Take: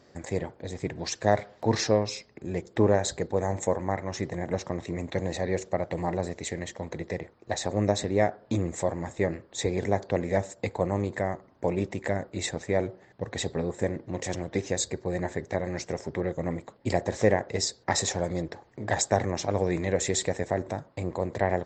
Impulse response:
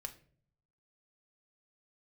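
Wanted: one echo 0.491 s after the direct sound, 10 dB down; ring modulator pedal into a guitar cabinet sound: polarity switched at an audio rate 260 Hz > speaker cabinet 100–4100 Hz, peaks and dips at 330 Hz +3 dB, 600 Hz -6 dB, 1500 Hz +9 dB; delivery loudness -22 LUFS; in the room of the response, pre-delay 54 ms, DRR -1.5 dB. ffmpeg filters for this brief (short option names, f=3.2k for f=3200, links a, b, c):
-filter_complex "[0:a]aecho=1:1:491:0.316,asplit=2[a][b];[1:a]atrim=start_sample=2205,adelay=54[c];[b][c]afir=irnorm=-1:irlink=0,volume=4dB[d];[a][d]amix=inputs=2:normalize=0,aeval=exprs='val(0)*sgn(sin(2*PI*260*n/s))':c=same,highpass=100,equalizer=f=330:t=q:w=4:g=3,equalizer=f=600:t=q:w=4:g=-6,equalizer=f=1.5k:t=q:w=4:g=9,lowpass=f=4.1k:w=0.5412,lowpass=f=4.1k:w=1.3066,volume=2.5dB"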